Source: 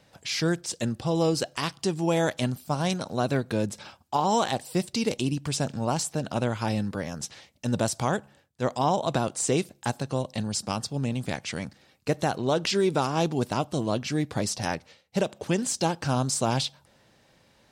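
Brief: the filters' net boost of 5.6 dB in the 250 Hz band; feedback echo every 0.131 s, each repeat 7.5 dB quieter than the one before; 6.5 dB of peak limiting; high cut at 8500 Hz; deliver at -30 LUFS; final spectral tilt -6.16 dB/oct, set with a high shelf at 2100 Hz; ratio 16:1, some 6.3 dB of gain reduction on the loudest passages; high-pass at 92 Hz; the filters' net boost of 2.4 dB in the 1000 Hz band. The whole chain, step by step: HPF 92 Hz; LPF 8500 Hz; bell 250 Hz +7.5 dB; bell 1000 Hz +4 dB; high shelf 2100 Hz -7.5 dB; compressor 16:1, threshold -22 dBFS; limiter -18.5 dBFS; feedback echo 0.131 s, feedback 42%, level -7.5 dB; gain +0.5 dB

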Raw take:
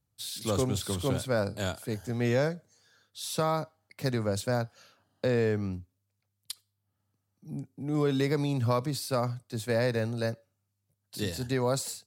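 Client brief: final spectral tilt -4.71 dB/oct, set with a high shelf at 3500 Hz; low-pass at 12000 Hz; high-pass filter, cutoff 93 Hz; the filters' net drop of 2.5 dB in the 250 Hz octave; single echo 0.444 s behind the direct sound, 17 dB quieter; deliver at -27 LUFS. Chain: HPF 93 Hz; LPF 12000 Hz; bell 250 Hz -3 dB; high shelf 3500 Hz +3 dB; echo 0.444 s -17 dB; gain +4.5 dB

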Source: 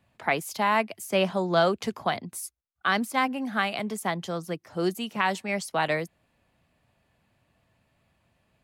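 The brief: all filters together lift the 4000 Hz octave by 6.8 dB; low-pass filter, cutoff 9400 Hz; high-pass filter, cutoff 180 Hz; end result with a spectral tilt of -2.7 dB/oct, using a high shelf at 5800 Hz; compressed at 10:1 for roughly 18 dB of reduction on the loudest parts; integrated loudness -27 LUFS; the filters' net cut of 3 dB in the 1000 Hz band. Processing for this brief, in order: HPF 180 Hz; LPF 9400 Hz; bell 1000 Hz -4.5 dB; bell 4000 Hz +8 dB; high shelf 5800 Hz +4.5 dB; compressor 10:1, threshold -37 dBFS; gain +14 dB

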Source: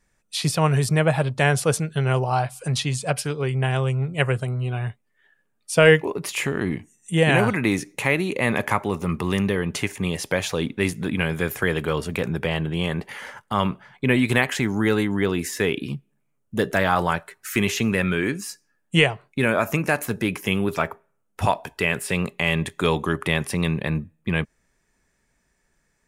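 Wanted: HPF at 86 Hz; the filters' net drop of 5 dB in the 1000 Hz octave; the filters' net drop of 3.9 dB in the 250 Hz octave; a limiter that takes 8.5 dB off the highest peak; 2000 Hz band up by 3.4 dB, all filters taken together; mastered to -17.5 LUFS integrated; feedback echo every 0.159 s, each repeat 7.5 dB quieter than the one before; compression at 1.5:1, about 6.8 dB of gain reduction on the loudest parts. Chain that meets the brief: HPF 86 Hz; bell 250 Hz -5.5 dB; bell 1000 Hz -8.5 dB; bell 2000 Hz +6.5 dB; compressor 1.5:1, threshold -28 dBFS; limiter -15 dBFS; feedback echo 0.159 s, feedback 42%, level -7.5 dB; gain +11 dB

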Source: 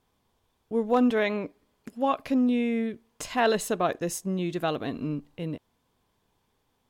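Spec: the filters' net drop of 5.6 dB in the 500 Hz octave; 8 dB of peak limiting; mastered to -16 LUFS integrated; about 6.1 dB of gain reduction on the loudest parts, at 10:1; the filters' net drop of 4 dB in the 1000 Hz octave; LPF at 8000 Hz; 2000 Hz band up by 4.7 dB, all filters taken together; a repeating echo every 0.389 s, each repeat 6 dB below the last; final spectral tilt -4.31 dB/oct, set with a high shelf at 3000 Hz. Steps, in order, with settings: LPF 8000 Hz; bell 500 Hz -6 dB; bell 1000 Hz -5 dB; bell 2000 Hz +6 dB; high shelf 3000 Hz +5 dB; compressor 10:1, threshold -26 dBFS; limiter -24 dBFS; feedback echo 0.389 s, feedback 50%, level -6 dB; gain +17.5 dB

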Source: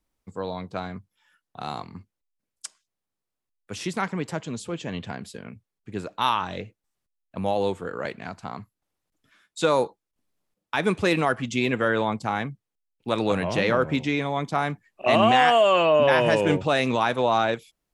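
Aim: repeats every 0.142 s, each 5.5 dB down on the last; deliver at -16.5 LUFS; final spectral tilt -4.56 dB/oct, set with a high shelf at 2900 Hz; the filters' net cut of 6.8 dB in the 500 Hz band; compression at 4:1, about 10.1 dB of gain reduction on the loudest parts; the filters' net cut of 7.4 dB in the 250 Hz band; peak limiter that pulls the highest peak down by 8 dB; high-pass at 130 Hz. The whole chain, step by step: HPF 130 Hz; bell 250 Hz -7 dB; bell 500 Hz -7 dB; high shelf 2900 Hz -4.5 dB; compressor 4:1, threshold -31 dBFS; limiter -25 dBFS; feedback echo 0.142 s, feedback 53%, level -5.5 dB; gain +20 dB

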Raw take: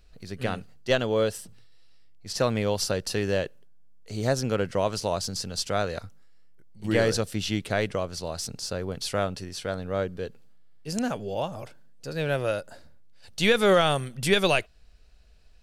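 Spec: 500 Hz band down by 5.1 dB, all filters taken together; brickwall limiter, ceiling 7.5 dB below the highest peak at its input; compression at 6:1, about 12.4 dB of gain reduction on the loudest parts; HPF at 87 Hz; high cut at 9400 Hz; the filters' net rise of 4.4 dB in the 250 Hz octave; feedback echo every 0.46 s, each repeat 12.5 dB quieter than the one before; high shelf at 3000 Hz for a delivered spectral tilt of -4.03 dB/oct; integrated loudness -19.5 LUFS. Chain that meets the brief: HPF 87 Hz; LPF 9400 Hz; bell 250 Hz +8 dB; bell 500 Hz -8.5 dB; high shelf 3000 Hz +3.5 dB; compressor 6:1, threshold -31 dBFS; limiter -25.5 dBFS; feedback echo 0.46 s, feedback 24%, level -12.5 dB; gain +18 dB

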